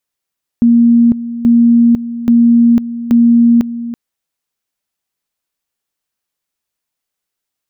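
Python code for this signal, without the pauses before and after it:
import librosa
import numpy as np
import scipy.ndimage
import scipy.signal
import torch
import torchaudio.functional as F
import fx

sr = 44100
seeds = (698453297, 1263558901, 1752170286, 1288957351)

y = fx.two_level_tone(sr, hz=235.0, level_db=-4.5, drop_db=14.0, high_s=0.5, low_s=0.33, rounds=4)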